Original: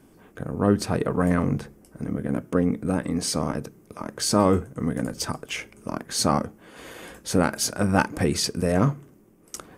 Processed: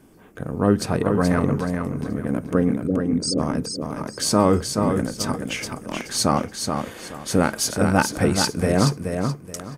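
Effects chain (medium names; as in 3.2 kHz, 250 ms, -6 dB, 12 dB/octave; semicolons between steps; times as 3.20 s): 2.87–3.39 s: resonances exaggerated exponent 3; 5.57–6.01 s: transient shaper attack -5 dB, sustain +7 dB; on a send: feedback delay 427 ms, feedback 26%, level -5.5 dB; on the sum: trim +2 dB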